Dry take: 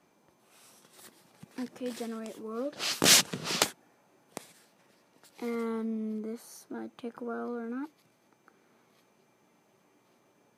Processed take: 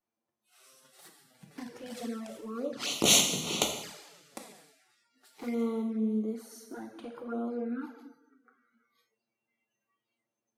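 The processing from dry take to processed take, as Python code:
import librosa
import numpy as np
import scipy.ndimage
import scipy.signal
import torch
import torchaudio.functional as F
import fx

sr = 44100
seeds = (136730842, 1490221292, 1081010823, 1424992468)

y = fx.rev_double_slope(x, sr, seeds[0], early_s=0.97, late_s=2.5, knee_db=-18, drr_db=2.5)
y = fx.env_flanger(y, sr, rest_ms=9.5, full_db=-28.5)
y = fx.noise_reduce_blind(y, sr, reduce_db=22)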